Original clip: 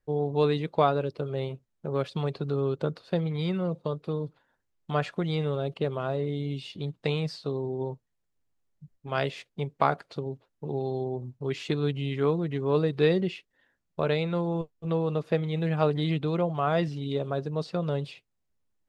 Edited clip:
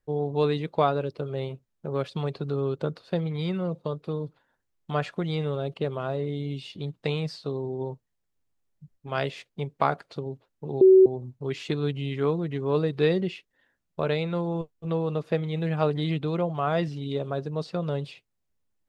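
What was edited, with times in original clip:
10.81–11.06 bleep 378 Hz -10.5 dBFS

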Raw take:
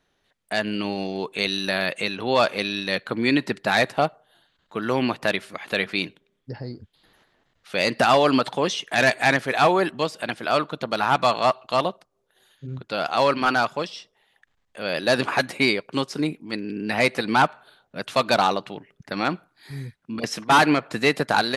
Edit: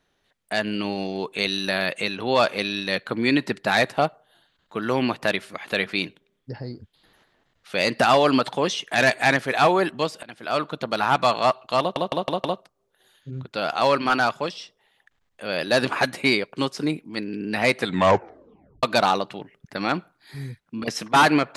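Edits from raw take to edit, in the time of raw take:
10.23–10.69 fade in, from -21 dB
11.8 stutter 0.16 s, 5 plays
17.15 tape stop 1.04 s

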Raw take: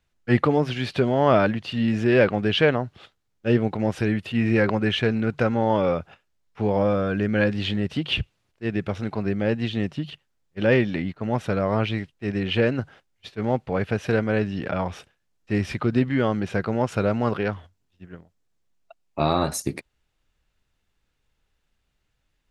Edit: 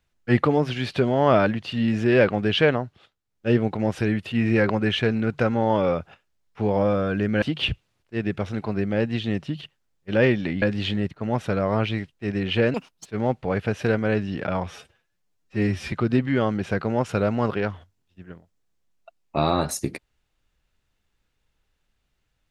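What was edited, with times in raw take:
2.75–3.49 dip -8 dB, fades 0.24 s
7.42–7.91 move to 11.11
12.74–13.3 speed 177%
14.92–15.75 stretch 1.5×

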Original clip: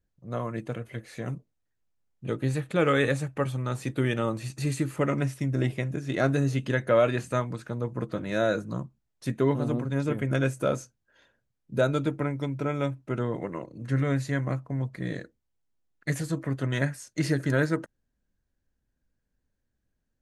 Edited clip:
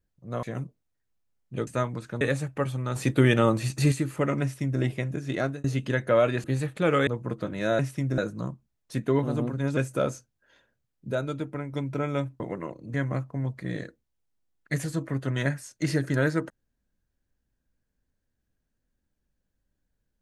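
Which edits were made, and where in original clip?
0.43–1.14 cut
2.38–3.01 swap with 7.24–7.78
3.76–4.72 gain +6.5 dB
5.22–5.61 copy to 8.5
6.14–6.44 fade out
10.09–10.43 cut
11.77–12.39 gain -5 dB
13.06–13.32 cut
13.86–14.3 cut

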